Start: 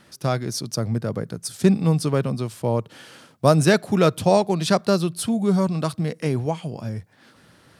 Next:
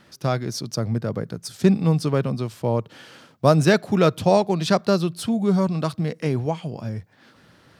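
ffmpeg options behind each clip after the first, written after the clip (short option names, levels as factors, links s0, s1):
-af "equalizer=f=9800:t=o:w=0.77:g=-8"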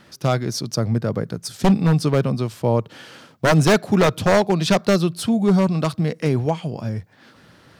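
-af "aeval=exprs='0.251*(abs(mod(val(0)/0.251+3,4)-2)-1)':c=same,volume=1.5"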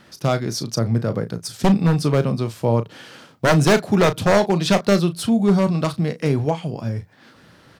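-filter_complex "[0:a]asplit=2[s0][s1];[s1]adelay=35,volume=0.266[s2];[s0][s2]amix=inputs=2:normalize=0"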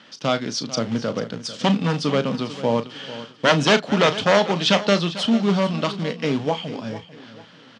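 -filter_complex "[0:a]asplit=2[s0][s1];[s1]acrusher=bits=2:mode=log:mix=0:aa=0.000001,volume=0.282[s2];[s0][s2]amix=inputs=2:normalize=0,highpass=240,equalizer=f=260:t=q:w=4:g=4,equalizer=f=360:t=q:w=4:g=-8,equalizer=f=700:t=q:w=4:g=-3,equalizer=f=3100:t=q:w=4:g=9,lowpass=f=6400:w=0.5412,lowpass=f=6400:w=1.3066,aecho=1:1:445|890|1335:0.178|0.0622|0.0218,volume=0.891"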